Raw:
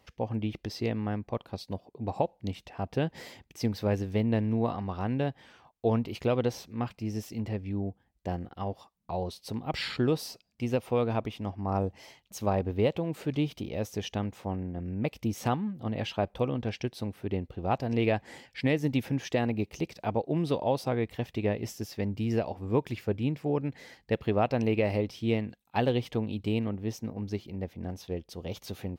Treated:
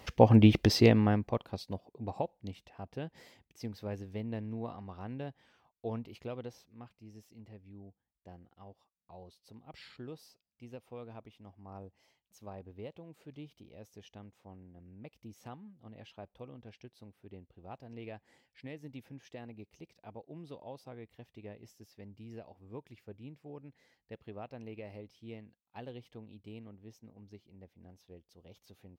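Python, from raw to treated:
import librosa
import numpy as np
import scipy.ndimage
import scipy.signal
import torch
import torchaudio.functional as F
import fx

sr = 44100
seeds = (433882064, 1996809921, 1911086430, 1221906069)

y = fx.gain(x, sr, db=fx.line((0.69, 11.5), (1.44, -1.0), (2.92, -11.5), (5.99, -11.5), (6.91, -19.0)))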